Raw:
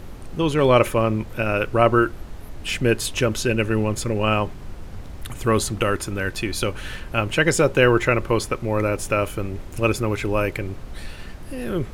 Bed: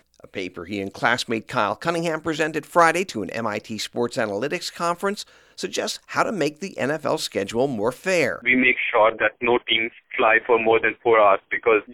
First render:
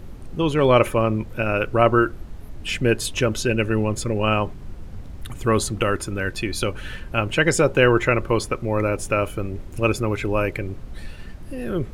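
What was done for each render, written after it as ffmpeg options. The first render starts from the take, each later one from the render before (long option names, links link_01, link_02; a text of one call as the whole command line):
ffmpeg -i in.wav -af "afftdn=noise_reduction=6:noise_floor=-37" out.wav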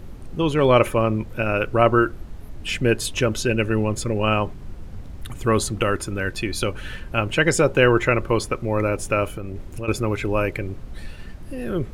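ffmpeg -i in.wav -filter_complex "[0:a]asettb=1/sr,asplit=3[link_01][link_02][link_03];[link_01]atrim=end=9.304[link_04];[link_02]atrim=start=9.3:end=9.88,asetpts=PTS-STARTPTS,afade=type=in:duration=0.004:curve=qsin,afade=type=out:start_time=0.576:duration=0.004:curve=qsin,acompressor=threshold=-26dB:ratio=6:attack=3.2:release=140:knee=1:detection=peak[link_05];[link_03]atrim=start=9.876[link_06];[link_04][link_05]acrossfade=duration=0.004:curve1=hsin:curve2=qsin[link_07];[link_07][link_06]acrossfade=duration=0.004:curve1=qsin:curve2=hsin" out.wav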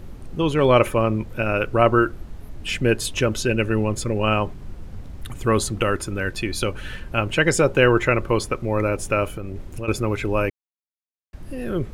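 ffmpeg -i in.wav -filter_complex "[0:a]asplit=3[link_01][link_02][link_03];[link_01]atrim=end=10.5,asetpts=PTS-STARTPTS,afade=type=out:start_time=10.496:duration=0.004:curve=hsin[link_04];[link_02]atrim=start=10.5:end=11.33,asetpts=PTS-STARTPTS,volume=0[link_05];[link_03]atrim=start=11.33,asetpts=PTS-STARTPTS,afade=type=in:duration=0.004:curve=hsin[link_06];[link_04][link_05][link_06]concat=n=3:v=0:a=1" out.wav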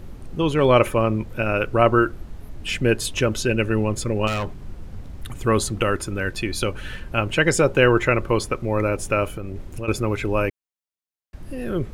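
ffmpeg -i in.wav -filter_complex "[0:a]asettb=1/sr,asplit=3[link_01][link_02][link_03];[link_01]atrim=end=4.274[link_04];[link_02]atrim=start=4.27:end=5.45,asetpts=PTS-STARTPTS,afade=type=in:duration=0.004:curve=qsin,afade=type=out:start_time=1.176:duration=0.004:curve=qsin,asoftclip=type=hard:threshold=-21.5dB[link_05];[link_03]atrim=start=5.446[link_06];[link_04][link_05]acrossfade=duration=0.004:curve1=hsin:curve2=qsin[link_07];[link_07][link_06]acrossfade=duration=0.004:curve1=qsin:curve2=hsin" out.wav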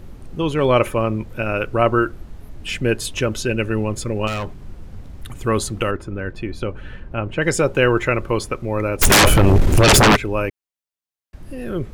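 ffmpeg -i in.wav -filter_complex "[0:a]asettb=1/sr,asplit=3[link_01][link_02][link_03];[link_01]atrim=end=5.914[link_04];[link_02]atrim=start=5.91:end=7.42,asetpts=PTS-STARTPTS,afade=type=in:duration=0.004:curve=qsin,afade=type=out:start_time=1.506:duration=0.004:curve=qsin,lowpass=frequency=1100:poles=1[link_05];[link_03]atrim=start=7.416[link_06];[link_04][link_05]acrossfade=duration=0.004:curve1=hsin:curve2=qsin[link_07];[link_07][link_06]acrossfade=duration=0.004:curve1=qsin:curve2=hsin,asplit=3[link_08][link_09][link_10];[link_08]afade=type=out:start_time=9.01:duration=0.02[link_11];[link_09]aeval=exprs='0.422*sin(PI/2*10*val(0)/0.422)':channel_layout=same,afade=type=in:start_time=9.01:duration=0.02,afade=type=out:start_time=10.15:duration=0.02[link_12];[link_10]afade=type=in:start_time=10.15:duration=0.02[link_13];[link_11][link_12][link_13]amix=inputs=3:normalize=0" out.wav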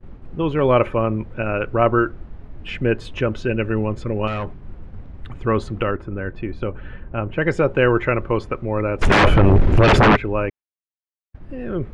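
ffmpeg -i in.wav -af "agate=range=-33dB:threshold=-33dB:ratio=3:detection=peak,lowpass=2300" out.wav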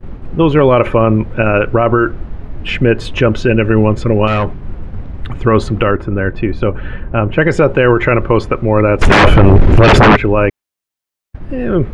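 ffmpeg -i in.wav -af "alimiter=level_in=11.5dB:limit=-1dB:release=50:level=0:latency=1" out.wav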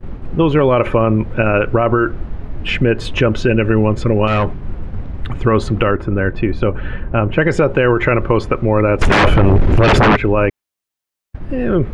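ffmpeg -i in.wav -af "acompressor=threshold=-11dB:ratio=2" out.wav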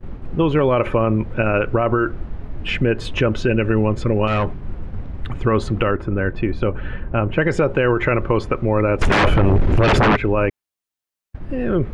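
ffmpeg -i in.wav -af "volume=-4dB" out.wav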